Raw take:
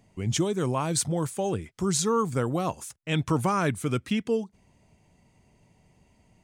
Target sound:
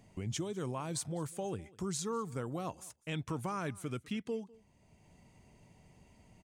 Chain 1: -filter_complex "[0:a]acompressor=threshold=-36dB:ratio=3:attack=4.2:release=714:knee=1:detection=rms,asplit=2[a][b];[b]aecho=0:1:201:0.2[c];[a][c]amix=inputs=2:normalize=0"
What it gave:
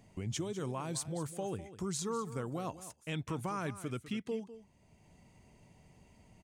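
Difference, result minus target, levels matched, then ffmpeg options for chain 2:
echo-to-direct +9 dB
-filter_complex "[0:a]acompressor=threshold=-36dB:ratio=3:attack=4.2:release=714:knee=1:detection=rms,asplit=2[a][b];[b]aecho=0:1:201:0.0708[c];[a][c]amix=inputs=2:normalize=0"

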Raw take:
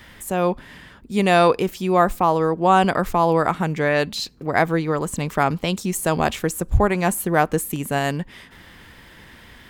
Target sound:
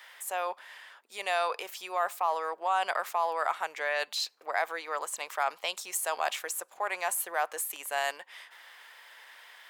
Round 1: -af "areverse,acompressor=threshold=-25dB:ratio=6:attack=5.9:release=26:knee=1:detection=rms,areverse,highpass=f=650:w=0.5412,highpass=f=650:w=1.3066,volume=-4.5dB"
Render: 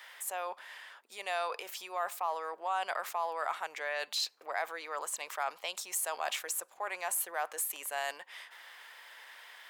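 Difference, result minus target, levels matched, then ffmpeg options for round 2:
compressor: peak gain reduction +5.5 dB
-af "areverse,acompressor=threshold=-18.5dB:ratio=6:attack=5.9:release=26:knee=1:detection=rms,areverse,highpass=f=650:w=0.5412,highpass=f=650:w=1.3066,volume=-4.5dB"

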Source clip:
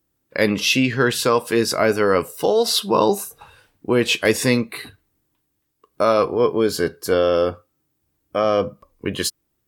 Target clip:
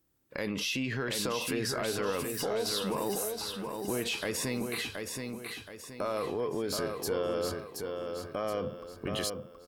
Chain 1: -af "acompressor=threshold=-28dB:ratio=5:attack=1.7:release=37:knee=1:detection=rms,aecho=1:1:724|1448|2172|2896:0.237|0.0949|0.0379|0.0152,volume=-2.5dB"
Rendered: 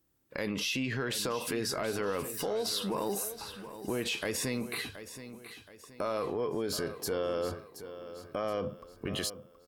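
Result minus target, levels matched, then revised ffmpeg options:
echo-to-direct -7.5 dB
-af "acompressor=threshold=-28dB:ratio=5:attack=1.7:release=37:knee=1:detection=rms,aecho=1:1:724|1448|2172|2896|3620:0.562|0.225|0.09|0.036|0.0144,volume=-2.5dB"

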